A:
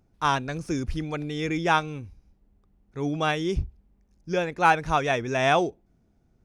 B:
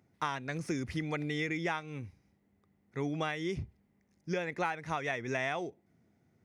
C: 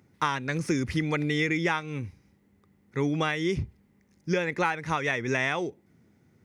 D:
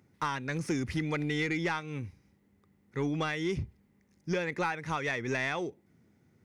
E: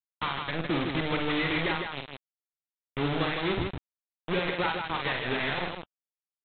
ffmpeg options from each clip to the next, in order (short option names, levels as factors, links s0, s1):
-af "highpass=f=94:w=0.5412,highpass=f=94:w=1.3066,equalizer=f=2000:w=4.6:g=11.5,acompressor=threshold=0.0398:ratio=12,volume=0.794"
-af "equalizer=f=690:w=5.6:g=-9,volume=2.51"
-af "asoftclip=type=tanh:threshold=0.133,volume=0.668"
-af "aresample=8000,acrusher=bits=4:mix=0:aa=0.000001,aresample=44100,aecho=1:1:49.56|157.4:0.562|0.562" -ar 48000 -c:a libvorbis -b:a 96k